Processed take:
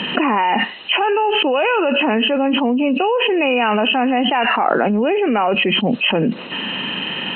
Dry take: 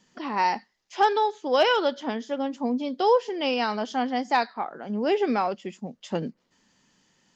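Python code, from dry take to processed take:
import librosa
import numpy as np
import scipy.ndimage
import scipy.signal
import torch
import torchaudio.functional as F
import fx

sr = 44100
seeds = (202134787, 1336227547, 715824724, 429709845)

y = fx.freq_compress(x, sr, knee_hz=2400.0, ratio=4.0)
y = scipy.signal.sosfilt(scipy.signal.butter(2, 180.0, 'highpass', fs=sr, output='sos'), y)
y = fx.env_flatten(y, sr, amount_pct=100)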